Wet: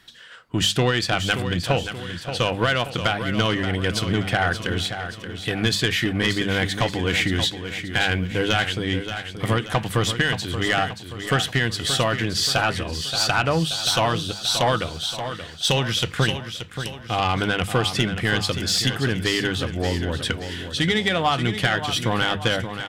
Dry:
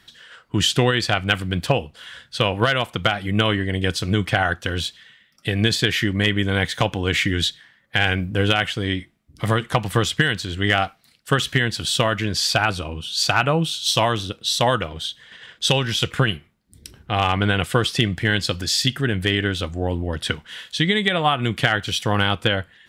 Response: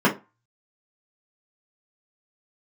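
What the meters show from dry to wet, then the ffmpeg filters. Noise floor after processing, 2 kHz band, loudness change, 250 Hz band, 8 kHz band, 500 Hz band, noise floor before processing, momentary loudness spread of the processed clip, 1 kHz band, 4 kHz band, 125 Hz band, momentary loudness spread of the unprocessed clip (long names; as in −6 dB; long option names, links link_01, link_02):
−38 dBFS, −1.0 dB, −1.5 dB, −1.5 dB, 0.0 dB, −1.5 dB, −58 dBFS, 7 LU, −1.0 dB, −1.0 dB, −2.0 dB, 7 LU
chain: -filter_complex "[0:a]bandreject=frequency=50:width_type=h:width=6,bandreject=frequency=100:width_type=h:width=6,bandreject=frequency=150:width_type=h:width=6,bandreject=frequency=200:width_type=h:width=6,asoftclip=type=tanh:threshold=-11.5dB,asplit=2[link_01][link_02];[link_02]aecho=0:1:578|1156|1734|2312|2890:0.335|0.161|0.0772|0.037|0.0178[link_03];[link_01][link_03]amix=inputs=2:normalize=0"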